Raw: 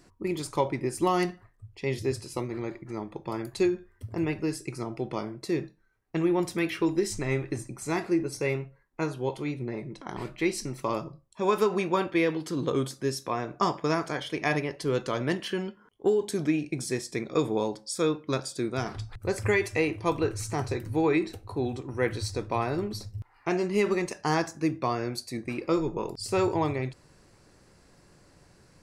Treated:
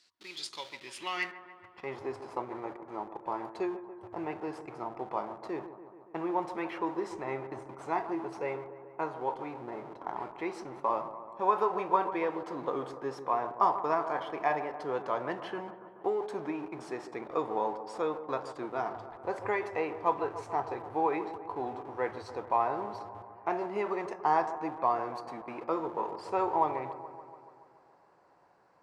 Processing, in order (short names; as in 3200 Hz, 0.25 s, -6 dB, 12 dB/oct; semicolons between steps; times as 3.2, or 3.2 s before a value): in parallel at -12 dB: Schmitt trigger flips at -39 dBFS; on the sum: band-pass sweep 4000 Hz -> 870 Hz, 0.73–2; dark delay 0.143 s, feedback 67%, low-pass 1400 Hz, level -11.5 dB; gain +4 dB